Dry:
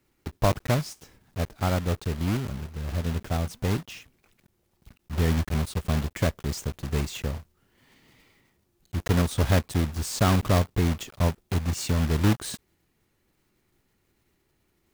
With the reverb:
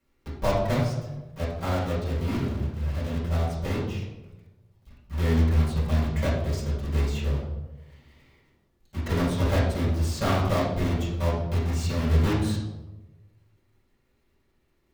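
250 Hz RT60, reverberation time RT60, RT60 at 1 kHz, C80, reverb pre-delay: 1.2 s, 1.1 s, 0.95 s, 6.0 dB, 4 ms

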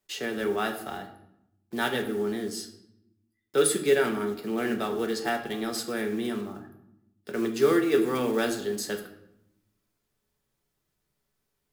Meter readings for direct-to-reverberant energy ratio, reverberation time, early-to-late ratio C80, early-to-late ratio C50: 3.0 dB, 0.80 s, 12.0 dB, 10.0 dB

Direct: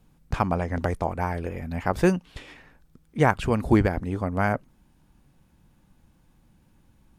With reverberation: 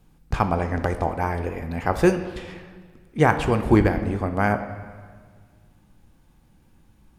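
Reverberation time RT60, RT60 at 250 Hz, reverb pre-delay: 1.7 s, 1.9 s, 3 ms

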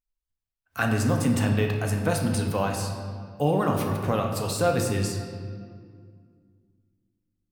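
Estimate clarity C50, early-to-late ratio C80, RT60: 4.5 dB, 6.0 dB, 2.1 s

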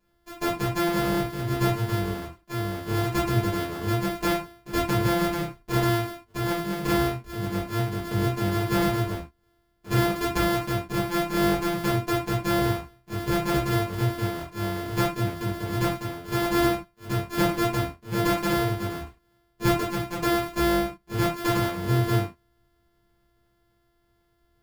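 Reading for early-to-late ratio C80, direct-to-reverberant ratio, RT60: 14.0 dB, -7.5 dB, no single decay rate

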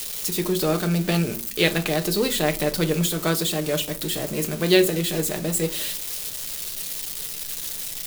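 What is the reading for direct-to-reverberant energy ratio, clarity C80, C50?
5.0 dB, 23.0 dB, 17.5 dB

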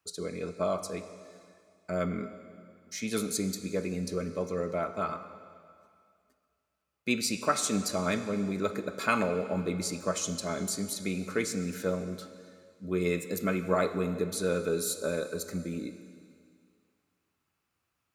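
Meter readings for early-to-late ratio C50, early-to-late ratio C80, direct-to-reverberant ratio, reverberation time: 10.0 dB, 11.0 dB, 9.5 dB, 2.2 s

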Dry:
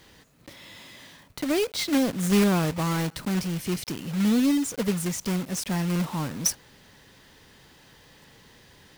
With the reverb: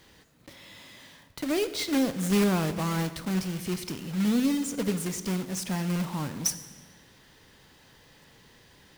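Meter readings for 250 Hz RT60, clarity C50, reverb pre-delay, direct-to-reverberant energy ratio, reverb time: 1.7 s, 12.5 dB, 14 ms, 11.0 dB, 1.5 s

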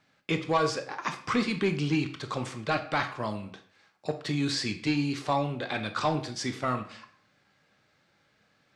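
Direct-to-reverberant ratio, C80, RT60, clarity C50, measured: 7.5 dB, 15.0 dB, 0.55 s, 11.0 dB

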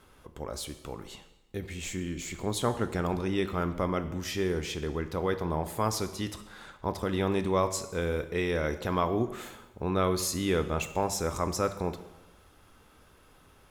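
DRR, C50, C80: 9.5 dB, 12.0 dB, 14.0 dB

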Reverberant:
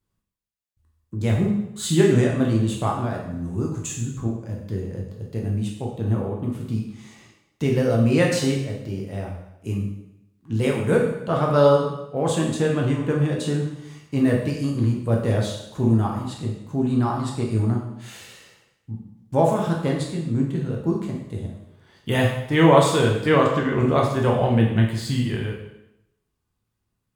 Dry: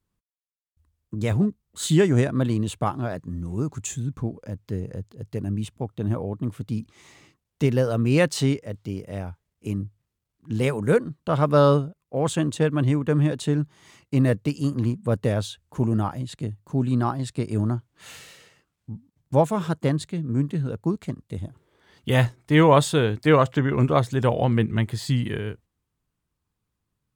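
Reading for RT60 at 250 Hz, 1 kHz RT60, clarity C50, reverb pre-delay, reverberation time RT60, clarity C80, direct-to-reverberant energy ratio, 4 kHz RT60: 0.85 s, 0.85 s, 4.0 dB, 5 ms, 0.85 s, 7.0 dB, -1.5 dB, 0.80 s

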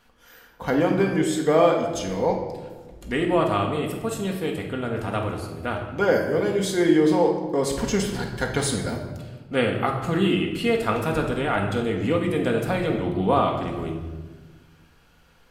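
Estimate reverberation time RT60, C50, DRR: 1.4 s, 5.0 dB, 0.5 dB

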